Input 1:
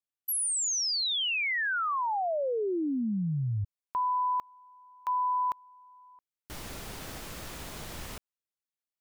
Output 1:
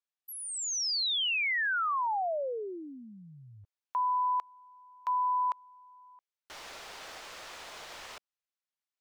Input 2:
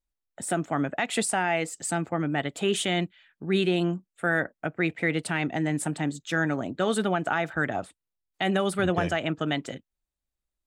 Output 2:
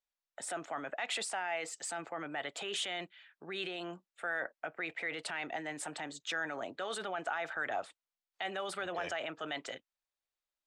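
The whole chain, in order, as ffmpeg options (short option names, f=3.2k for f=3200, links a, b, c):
-filter_complex "[0:a]alimiter=limit=-24dB:level=0:latency=1:release=16,acrossover=split=470 7000:gain=0.0794 1 0.178[a][b][c];[a][b][c]amix=inputs=3:normalize=0"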